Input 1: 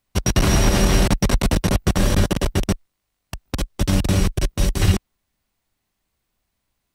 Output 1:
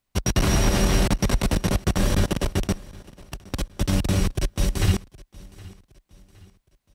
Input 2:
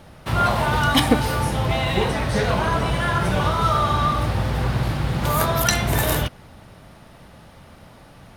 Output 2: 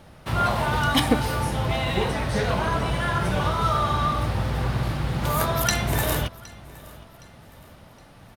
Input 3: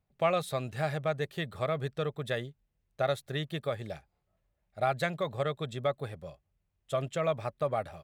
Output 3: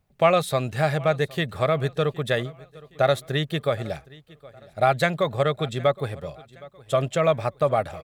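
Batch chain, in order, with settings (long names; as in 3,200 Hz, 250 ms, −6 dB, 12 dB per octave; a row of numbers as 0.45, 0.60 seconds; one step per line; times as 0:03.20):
repeating echo 766 ms, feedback 41%, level −22 dB
loudness normalisation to −24 LKFS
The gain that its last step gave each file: −3.5, −3.0, +9.0 decibels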